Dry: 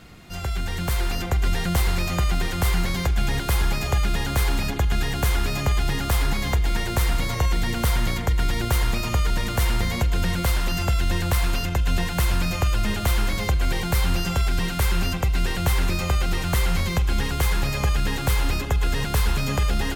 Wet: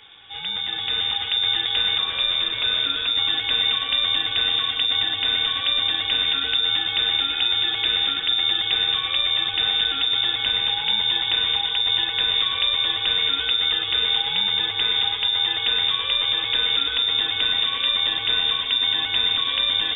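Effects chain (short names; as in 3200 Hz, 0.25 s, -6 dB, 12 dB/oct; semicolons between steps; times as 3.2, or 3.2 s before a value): 1.98–3.15 minimum comb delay 0.9 ms; low shelf 200 Hz -4.5 dB; split-band echo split 2000 Hz, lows 0.219 s, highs 0.159 s, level -8 dB; inverted band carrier 3600 Hz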